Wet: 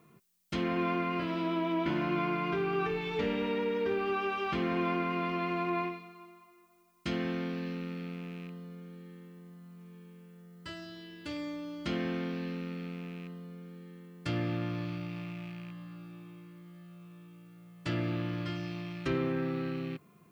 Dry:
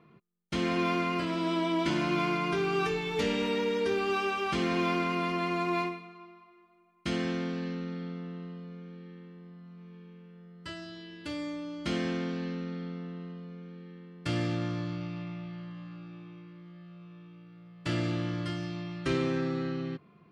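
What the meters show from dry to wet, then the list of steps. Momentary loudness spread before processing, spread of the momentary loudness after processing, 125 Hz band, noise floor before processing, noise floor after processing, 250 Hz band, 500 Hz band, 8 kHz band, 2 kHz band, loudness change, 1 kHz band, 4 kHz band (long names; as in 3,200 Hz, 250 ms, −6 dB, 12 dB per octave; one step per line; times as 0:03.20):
21 LU, 20 LU, −2.0 dB, −60 dBFS, −61 dBFS, −2.0 dB, −2.0 dB, can't be measured, −3.0 dB, −2.5 dB, −2.0 dB, −5.5 dB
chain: loose part that buzzes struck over −39 dBFS, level −38 dBFS
treble cut that deepens with the level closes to 2,500 Hz, closed at −25.5 dBFS
background noise blue −73 dBFS
level −2 dB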